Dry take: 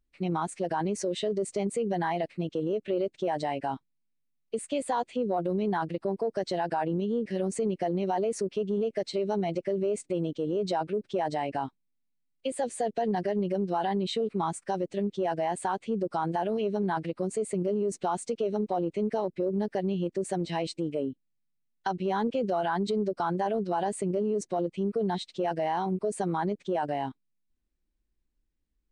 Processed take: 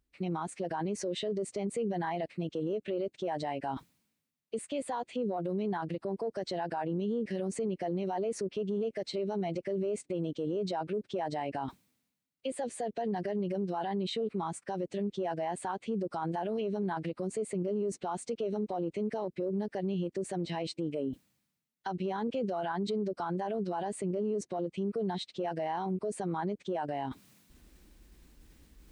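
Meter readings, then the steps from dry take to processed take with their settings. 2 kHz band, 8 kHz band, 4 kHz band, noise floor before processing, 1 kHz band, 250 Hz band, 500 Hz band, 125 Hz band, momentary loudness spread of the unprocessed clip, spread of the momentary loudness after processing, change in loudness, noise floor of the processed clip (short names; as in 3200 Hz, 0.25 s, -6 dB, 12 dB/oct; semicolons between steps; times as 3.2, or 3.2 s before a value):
-5.0 dB, -4.5 dB, -3.0 dB, -76 dBFS, -6.0 dB, -3.5 dB, -4.5 dB, -3.5 dB, 4 LU, 4 LU, -4.5 dB, -81 dBFS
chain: limiter -25.5 dBFS, peak gain reduction 8.5 dB; HPF 41 Hz; reverse; upward compressor, threshold -36 dBFS; reverse; dynamic EQ 8200 Hz, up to -5 dB, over -54 dBFS, Q 0.79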